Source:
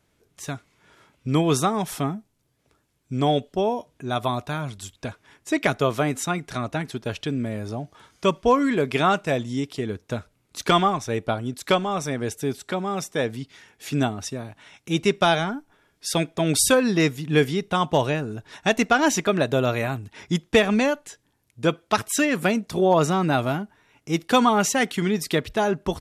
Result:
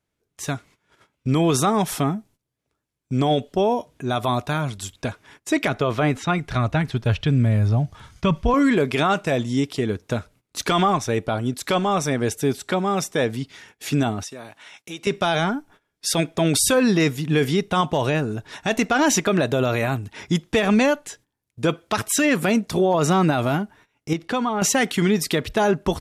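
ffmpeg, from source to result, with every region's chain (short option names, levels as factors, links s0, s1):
-filter_complex "[0:a]asettb=1/sr,asplit=3[s0][s1][s2];[s0]atrim=end=5.684[s3];[s1]atrim=start=5.68:end=8.54,asetpts=PTS-STARTPTS,afade=t=in:d=0.004:c=qsin,afade=t=out:st=2.856:d=0.004:c=qsin,acrossover=split=4500[s4][s5];[s5]acompressor=threshold=0.00158:ratio=4:attack=1:release=60[s6];[s4][s6]amix=inputs=2:normalize=0,asubboost=boost=11.5:cutoff=120[s7];[s2]atrim=start=8.536[s8];[s3][s7]acrossfade=d=0.004:c1=hsin:c2=qsin[s9];[s9][s8]acrossfade=d=0.004:c1=qsin:c2=hsin,asettb=1/sr,asplit=3[s10][s11][s12];[s10]atrim=end=14.234[s13];[s11]atrim=start=14.23:end=15.07,asetpts=PTS-STARTPTS,afade=t=in:d=0.004:c=qsin,afade=t=out:st=0.836:d=0.004:c=qsin,highpass=f=640:p=1,acompressor=threshold=0.0126:ratio=3:attack=3.2:release=140:knee=1:detection=peak[s14];[s12]atrim=start=15.066[s15];[s13][s14]acrossfade=d=0.004:c1=hsin:c2=qsin[s16];[s16][s15]acrossfade=d=0.004:c1=qsin:c2=hsin,asettb=1/sr,asplit=3[s17][s18][s19];[s17]atrim=end=24.134[s20];[s18]atrim=start=24.13:end=24.62,asetpts=PTS-STARTPTS,afade=t=in:d=0.004:c=qsin,afade=t=out:st=0.486:d=0.004:c=qsin,aemphasis=mode=reproduction:type=50fm,acompressor=threshold=0.0224:ratio=2:attack=3.2:release=140:knee=1:detection=peak[s21];[s19]atrim=start=24.616[s22];[s20][s21]acrossfade=d=0.004:c1=hsin:c2=qsin[s23];[s23][s22]acrossfade=d=0.004:c1=qsin:c2=hsin,agate=range=0.141:threshold=0.00224:ratio=16:detection=peak,alimiter=limit=0.168:level=0:latency=1:release=28,volume=1.78"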